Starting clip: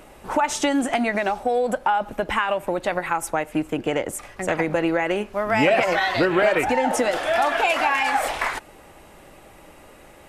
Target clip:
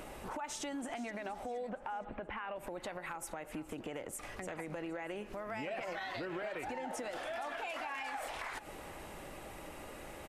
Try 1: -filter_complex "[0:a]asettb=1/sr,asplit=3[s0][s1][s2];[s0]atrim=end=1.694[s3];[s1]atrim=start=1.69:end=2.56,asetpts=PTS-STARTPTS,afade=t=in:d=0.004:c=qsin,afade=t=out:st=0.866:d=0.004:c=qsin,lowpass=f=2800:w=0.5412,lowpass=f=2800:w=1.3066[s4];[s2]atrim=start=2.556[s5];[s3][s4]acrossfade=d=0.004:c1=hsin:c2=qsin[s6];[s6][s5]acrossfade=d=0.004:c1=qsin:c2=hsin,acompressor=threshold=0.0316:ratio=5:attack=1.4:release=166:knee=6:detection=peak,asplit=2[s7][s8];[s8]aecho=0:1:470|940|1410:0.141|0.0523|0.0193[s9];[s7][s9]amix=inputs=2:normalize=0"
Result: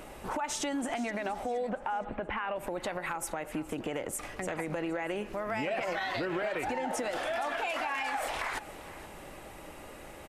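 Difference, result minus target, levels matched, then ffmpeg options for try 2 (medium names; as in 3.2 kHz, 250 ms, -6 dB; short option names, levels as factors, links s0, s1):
compression: peak gain reduction -7.5 dB
-filter_complex "[0:a]asettb=1/sr,asplit=3[s0][s1][s2];[s0]atrim=end=1.694[s3];[s1]atrim=start=1.69:end=2.56,asetpts=PTS-STARTPTS,afade=t=in:d=0.004:c=qsin,afade=t=out:st=0.866:d=0.004:c=qsin,lowpass=f=2800:w=0.5412,lowpass=f=2800:w=1.3066[s4];[s2]atrim=start=2.556[s5];[s3][s4]acrossfade=d=0.004:c1=hsin:c2=qsin[s6];[s6][s5]acrossfade=d=0.004:c1=qsin:c2=hsin,acompressor=threshold=0.0106:ratio=5:attack=1.4:release=166:knee=6:detection=peak,asplit=2[s7][s8];[s8]aecho=0:1:470|940|1410:0.141|0.0523|0.0193[s9];[s7][s9]amix=inputs=2:normalize=0"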